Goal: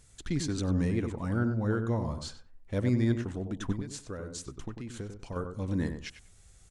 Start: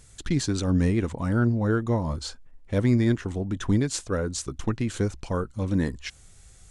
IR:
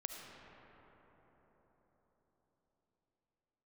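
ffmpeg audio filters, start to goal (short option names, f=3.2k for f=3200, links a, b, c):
-filter_complex "[0:a]asettb=1/sr,asplit=3[a][b][c];[a]atrim=end=3.724[d];[b]atrim=start=3.72:end=5.36,asetpts=PTS-STARTPTS,afade=t=in:d=0.004:c=qsin,afade=t=out:st=1.636:d=0.004:c=qsin,acompressor=threshold=-30dB:ratio=6[e];[c]atrim=start=5.356[f];[d][e]acrossfade=d=0.004:c1=hsin:c2=qsin[g];[g][f]acrossfade=d=0.004:c1=qsin:c2=hsin,asplit=2[h][i];[i]adelay=96,lowpass=f=1.6k:p=1,volume=-6.5dB,asplit=2[j][k];[k]adelay=96,lowpass=f=1.6k:p=1,volume=0.22,asplit=2[l][m];[m]adelay=96,lowpass=f=1.6k:p=1,volume=0.22[n];[j][l][n]amix=inputs=3:normalize=0[o];[h][o]amix=inputs=2:normalize=0,volume=-6.5dB"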